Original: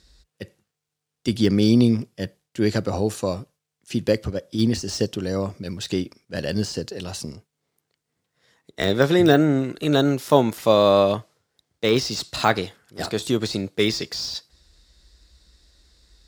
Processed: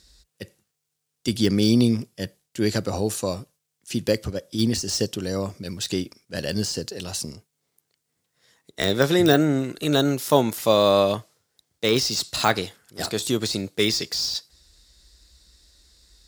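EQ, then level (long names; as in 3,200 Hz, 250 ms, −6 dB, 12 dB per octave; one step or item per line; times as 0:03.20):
high-shelf EQ 4,800 Hz +10.5 dB
−2.0 dB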